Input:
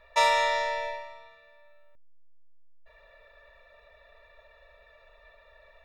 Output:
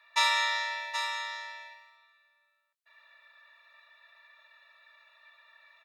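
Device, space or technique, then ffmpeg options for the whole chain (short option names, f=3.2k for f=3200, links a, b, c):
headphones lying on a table: -filter_complex "[0:a]highpass=f=1k:w=0.5412,highpass=f=1k:w=1.3066,equalizer=f=4k:t=o:w=0.31:g=4,asplit=2[a][b];[b]adelay=22,volume=-13dB[c];[a][c]amix=inputs=2:normalize=0,aecho=1:1:775:0.398"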